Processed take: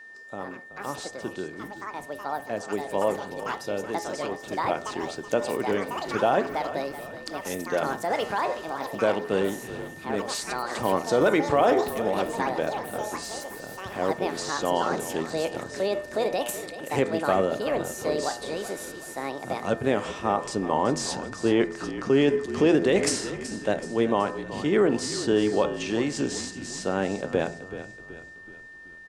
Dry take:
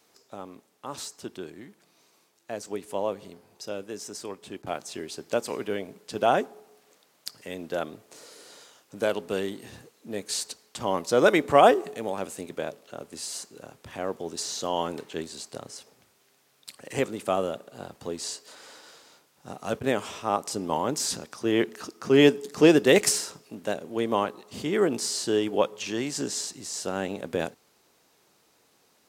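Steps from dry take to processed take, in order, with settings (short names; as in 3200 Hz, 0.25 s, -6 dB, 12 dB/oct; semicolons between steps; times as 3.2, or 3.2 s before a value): LPF 10000 Hz 24 dB/oct; high shelf 3400 Hz -9.5 dB; de-hum 84.4 Hz, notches 29; limiter -16 dBFS, peak gain reduction 11 dB; echoes that change speed 0.174 s, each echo +6 st, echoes 2, each echo -6 dB; frequency-shifting echo 0.377 s, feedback 48%, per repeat -46 Hz, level -13 dB; whine 1800 Hz -48 dBFS; gain +4.5 dB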